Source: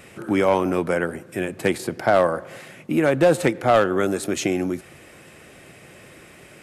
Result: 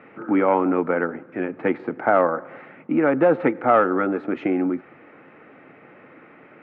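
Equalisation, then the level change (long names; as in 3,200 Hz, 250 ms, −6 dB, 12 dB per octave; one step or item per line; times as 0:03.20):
loudspeaker in its box 190–2,300 Hz, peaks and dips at 270 Hz +8 dB, 440 Hz +6 dB, 850 Hz +7 dB, 1,300 Hz +9 dB, 2,100 Hz +3 dB
low-shelf EQ 330 Hz +3.5 dB
notch filter 400 Hz, Q 12
−4.5 dB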